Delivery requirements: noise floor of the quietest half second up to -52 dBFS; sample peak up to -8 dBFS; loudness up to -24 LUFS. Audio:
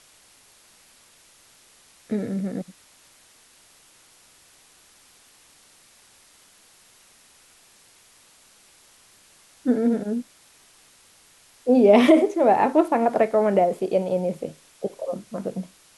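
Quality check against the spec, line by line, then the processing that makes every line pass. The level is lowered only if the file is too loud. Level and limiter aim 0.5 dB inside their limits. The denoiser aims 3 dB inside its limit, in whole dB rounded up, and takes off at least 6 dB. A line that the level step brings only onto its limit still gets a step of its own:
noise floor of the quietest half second -55 dBFS: OK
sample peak -5.0 dBFS: fail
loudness -21.5 LUFS: fail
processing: gain -3 dB; limiter -8.5 dBFS

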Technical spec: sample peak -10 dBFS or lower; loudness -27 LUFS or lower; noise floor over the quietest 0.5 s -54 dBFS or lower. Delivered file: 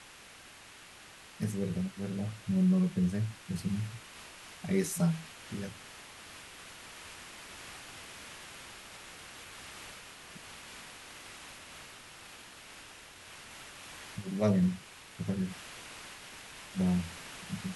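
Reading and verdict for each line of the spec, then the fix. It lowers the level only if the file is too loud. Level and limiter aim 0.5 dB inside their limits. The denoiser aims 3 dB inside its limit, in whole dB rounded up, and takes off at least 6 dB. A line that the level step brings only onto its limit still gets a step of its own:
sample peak -16.5 dBFS: OK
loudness -36.0 LUFS: OK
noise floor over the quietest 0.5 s -53 dBFS: fail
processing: denoiser 6 dB, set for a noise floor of -53 dBFS

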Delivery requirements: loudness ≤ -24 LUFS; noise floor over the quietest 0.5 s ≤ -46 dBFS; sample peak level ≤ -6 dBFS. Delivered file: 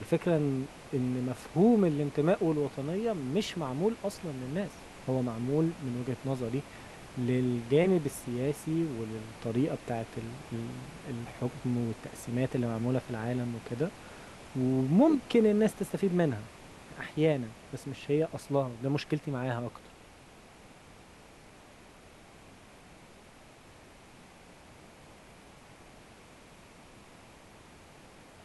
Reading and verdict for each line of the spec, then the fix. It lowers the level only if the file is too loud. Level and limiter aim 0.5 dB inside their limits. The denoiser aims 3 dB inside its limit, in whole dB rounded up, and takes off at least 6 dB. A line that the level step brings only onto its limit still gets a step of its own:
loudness -31.5 LUFS: OK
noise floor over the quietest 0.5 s -54 dBFS: OK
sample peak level -12.5 dBFS: OK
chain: none

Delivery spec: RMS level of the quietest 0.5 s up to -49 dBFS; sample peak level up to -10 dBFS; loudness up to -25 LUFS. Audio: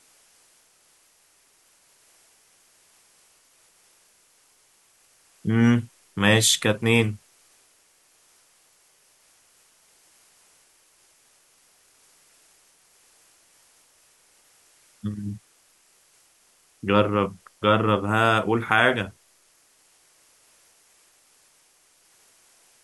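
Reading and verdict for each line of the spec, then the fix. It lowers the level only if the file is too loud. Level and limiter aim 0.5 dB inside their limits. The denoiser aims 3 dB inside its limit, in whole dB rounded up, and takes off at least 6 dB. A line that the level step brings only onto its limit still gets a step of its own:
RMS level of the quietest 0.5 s -61 dBFS: OK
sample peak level -3.5 dBFS: fail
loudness -22.0 LUFS: fail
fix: gain -3.5 dB; limiter -10.5 dBFS

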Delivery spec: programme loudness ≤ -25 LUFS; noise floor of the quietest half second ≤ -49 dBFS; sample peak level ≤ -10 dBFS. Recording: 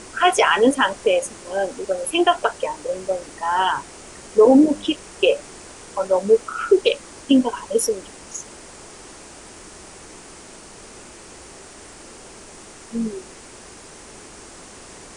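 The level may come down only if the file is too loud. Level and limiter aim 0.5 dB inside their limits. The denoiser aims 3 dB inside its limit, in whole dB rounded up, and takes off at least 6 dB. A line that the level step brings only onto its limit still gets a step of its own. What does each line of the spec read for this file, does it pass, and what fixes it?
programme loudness -20.0 LUFS: fail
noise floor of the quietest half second -42 dBFS: fail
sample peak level -4.5 dBFS: fail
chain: denoiser 6 dB, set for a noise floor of -42 dBFS; gain -5.5 dB; limiter -10.5 dBFS

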